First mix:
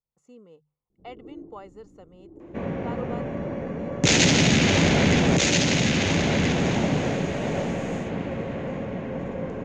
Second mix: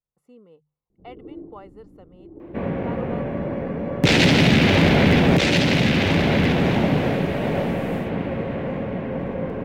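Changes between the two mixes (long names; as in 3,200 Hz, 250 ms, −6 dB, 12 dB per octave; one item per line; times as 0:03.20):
first sound +4.5 dB
second sound +4.0 dB
master: remove low-pass with resonance 6,700 Hz, resonance Q 8.4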